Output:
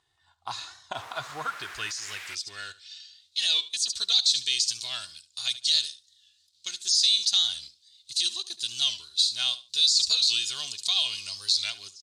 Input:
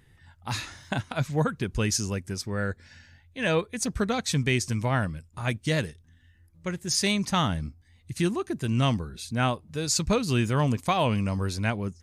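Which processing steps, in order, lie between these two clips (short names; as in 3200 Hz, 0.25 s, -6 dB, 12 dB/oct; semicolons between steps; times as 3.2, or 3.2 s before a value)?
G.711 law mismatch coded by A; comb 2.8 ms, depth 52%; feedback echo 72 ms, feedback 18%, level -18 dB; in parallel at +2 dB: compressor, threshold -32 dBFS, peak gain reduction 13 dB; on the sum: graphic EQ 250/500/1000/2000/4000/8000 Hz -11/-7/-6/-12/+12/+11 dB; 0.95–2.35 requantised 6-bit, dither triangular; limiter -15 dBFS, peak gain reduction 17 dB; band-pass sweep 1000 Hz -> 4100 Hz, 1.04–3.33; record warp 45 rpm, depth 100 cents; gain +7.5 dB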